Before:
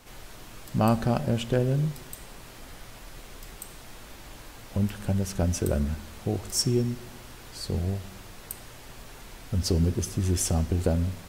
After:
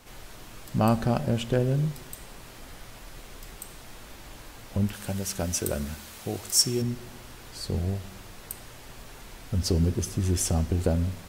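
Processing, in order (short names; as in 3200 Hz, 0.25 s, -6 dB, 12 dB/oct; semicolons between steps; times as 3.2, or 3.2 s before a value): 4.93–6.82 tilt +2 dB/oct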